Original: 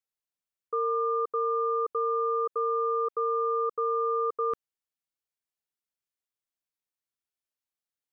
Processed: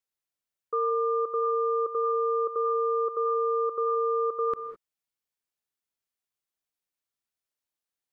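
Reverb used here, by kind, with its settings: gated-style reverb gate 230 ms rising, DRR 9.5 dB; trim +1 dB

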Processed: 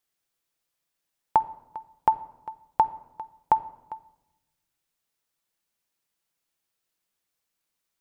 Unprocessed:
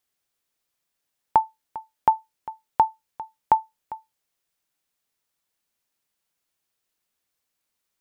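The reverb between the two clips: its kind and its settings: simulated room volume 3900 m³, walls furnished, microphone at 0.71 m; trim -2 dB

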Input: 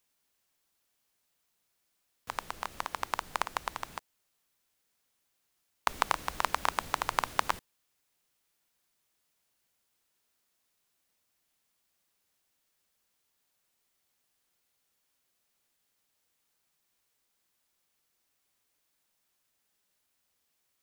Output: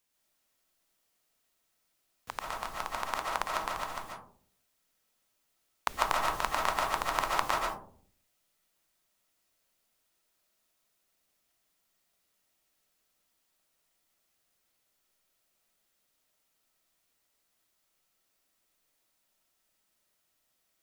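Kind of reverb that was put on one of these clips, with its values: algorithmic reverb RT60 0.54 s, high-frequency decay 0.3×, pre-delay 100 ms, DRR -2.5 dB; trim -2.5 dB

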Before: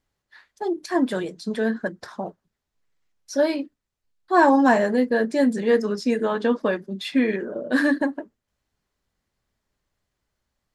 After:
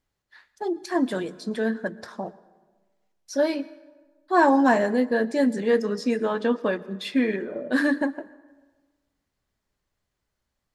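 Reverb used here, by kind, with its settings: plate-style reverb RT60 1.3 s, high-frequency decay 0.6×, pre-delay 100 ms, DRR 19 dB; trim -2 dB

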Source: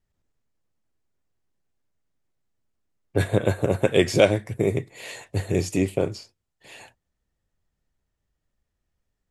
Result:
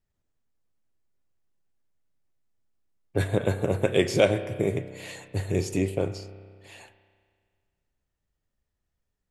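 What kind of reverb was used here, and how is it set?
spring tank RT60 1.9 s, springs 31 ms, chirp 75 ms, DRR 11.5 dB; trim -3.5 dB

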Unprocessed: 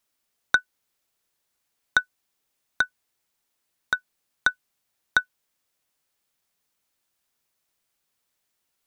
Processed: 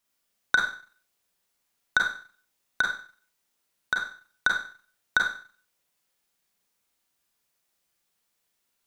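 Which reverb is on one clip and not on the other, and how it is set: Schroeder reverb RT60 0.44 s, combs from 32 ms, DRR -0.5 dB; trim -2.5 dB

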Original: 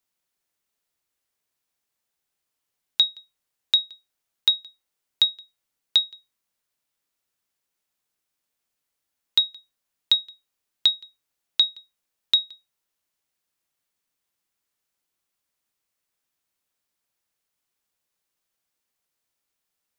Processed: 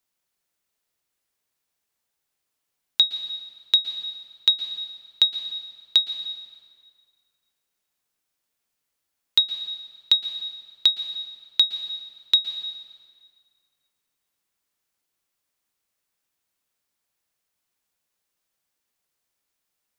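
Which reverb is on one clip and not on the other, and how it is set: plate-style reverb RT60 2 s, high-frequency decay 0.8×, pre-delay 105 ms, DRR 9 dB; trim +1 dB

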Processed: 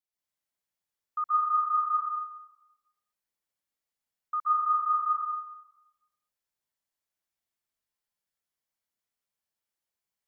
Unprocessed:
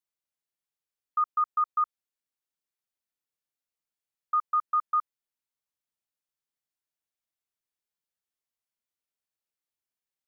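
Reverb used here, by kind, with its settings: plate-style reverb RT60 1 s, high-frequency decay 0.65×, pre-delay 115 ms, DRR -7.5 dB; trim -5.5 dB

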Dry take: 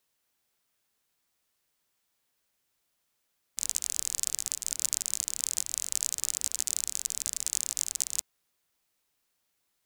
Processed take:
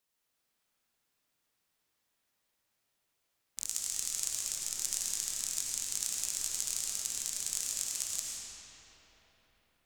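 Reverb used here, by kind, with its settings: algorithmic reverb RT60 4.7 s, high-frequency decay 0.6×, pre-delay 55 ms, DRR -4 dB; trim -6 dB

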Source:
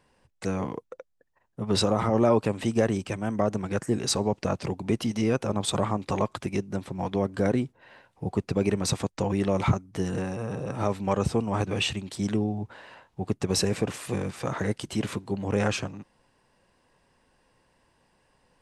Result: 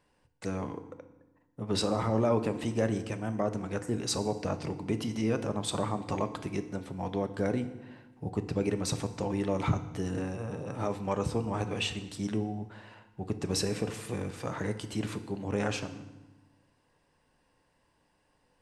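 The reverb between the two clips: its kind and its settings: FDN reverb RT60 1.1 s, low-frequency decay 1.4×, high-frequency decay 0.8×, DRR 9 dB; trim -5.5 dB

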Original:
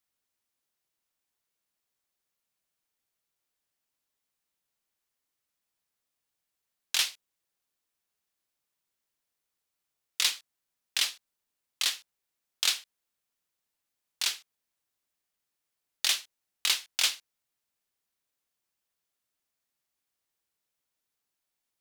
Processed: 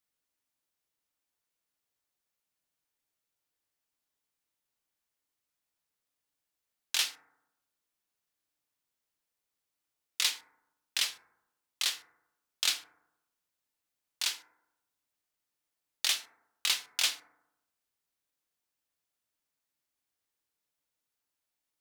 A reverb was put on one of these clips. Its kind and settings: FDN reverb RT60 0.87 s, low-frequency decay 1.1×, high-frequency decay 0.25×, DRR 9 dB; trim -2.5 dB

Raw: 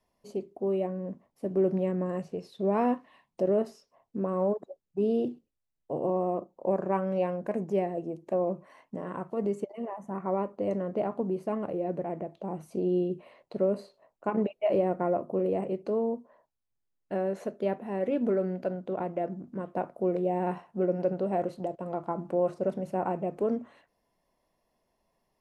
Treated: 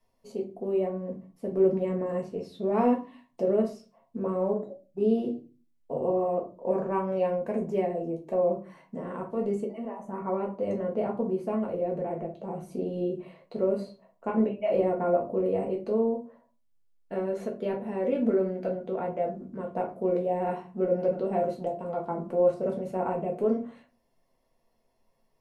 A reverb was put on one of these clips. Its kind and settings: simulated room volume 130 m³, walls furnished, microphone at 1.6 m; trim -2.5 dB

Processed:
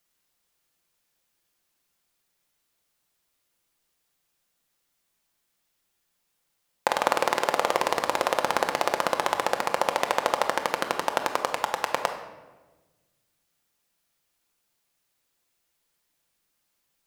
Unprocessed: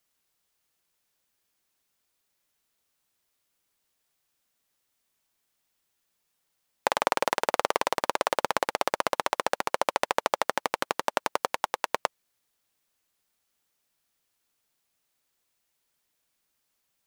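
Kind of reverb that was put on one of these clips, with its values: simulated room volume 810 m³, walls mixed, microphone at 0.83 m; trim +1 dB

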